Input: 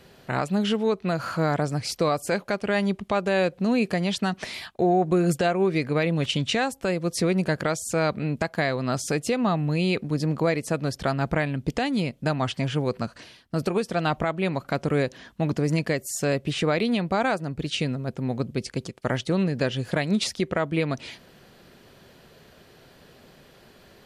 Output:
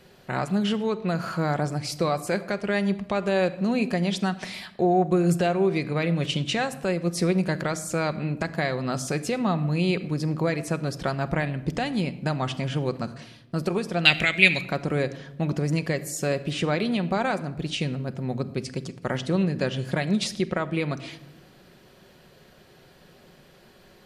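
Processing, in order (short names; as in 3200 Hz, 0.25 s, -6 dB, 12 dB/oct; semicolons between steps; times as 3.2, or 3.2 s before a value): 14.05–14.61 resonant high shelf 1600 Hz +14 dB, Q 3; shoebox room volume 3400 m³, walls furnished, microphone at 1 m; gain -2 dB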